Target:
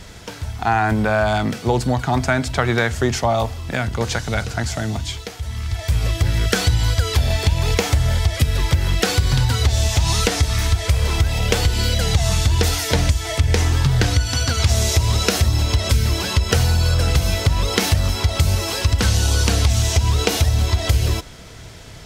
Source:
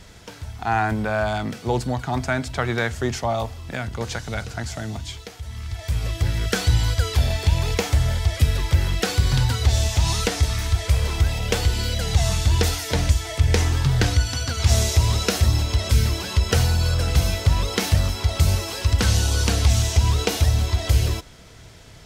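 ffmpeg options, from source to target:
-af "acompressor=threshold=-19dB:ratio=6,volume=6.5dB"

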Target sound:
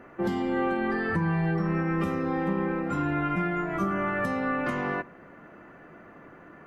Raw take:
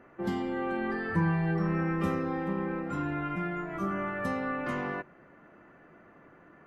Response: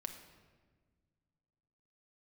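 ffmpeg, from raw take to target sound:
-filter_complex "[0:a]alimiter=level_in=0.5dB:limit=-24dB:level=0:latency=1:release=345,volume=-0.5dB,asplit=2[a][b];[1:a]atrim=start_sample=2205,asetrate=57330,aresample=44100[c];[b][c]afir=irnorm=-1:irlink=0,volume=-11dB[d];[a][d]amix=inputs=2:normalize=0,volume=5.5dB"

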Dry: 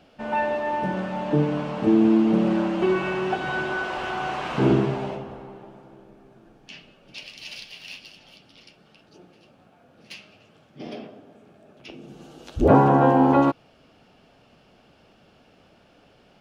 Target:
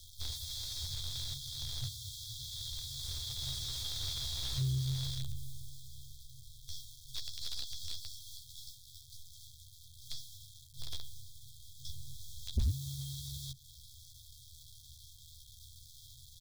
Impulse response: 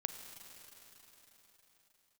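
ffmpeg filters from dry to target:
-filter_complex "[0:a]acrossover=split=160[a][b];[b]acrusher=bits=6:dc=4:mix=0:aa=0.000001[c];[a][c]amix=inputs=2:normalize=0,acompressor=threshold=-25dB:ratio=6,asplit=2[d][e];[e]adelay=13,volume=-5.5dB[f];[d][f]amix=inputs=2:normalize=0,afftfilt=real='re*(1-between(b*sr/4096,130,3200))':imag='im*(1-between(b*sr/4096,130,3200))':win_size=4096:overlap=0.75,asoftclip=type=tanh:threshold=-31dB,acrossover=split=4700[g][h];[h]acompressor=threshold=-53dB:ratio=4:attack=1:release=60[i];[g][i]amix=inputs=2:normalize=0,volume=6.5dB"

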